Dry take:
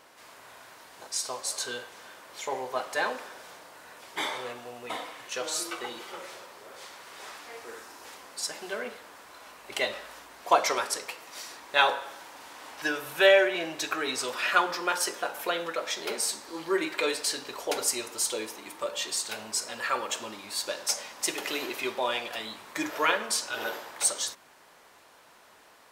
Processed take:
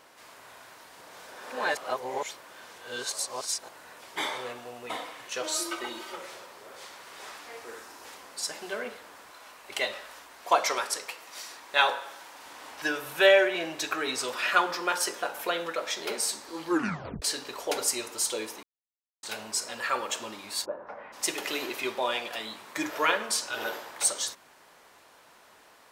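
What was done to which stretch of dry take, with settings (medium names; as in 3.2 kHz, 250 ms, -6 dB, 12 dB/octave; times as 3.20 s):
1.01–3.69 s: reverse
5.43–6.16 s: comb 3.2 ms
9.30–12.46 s: bass shelf 420 Hz -6 dB
16.68 s: tape stop 0.54 s
18.63–19.23 s: mute
20.64–21.12 s: low-pass 1 kHz -> 2.1 kHz 24 dB/octave
22.02–22.78 s: high-pass 110 Hz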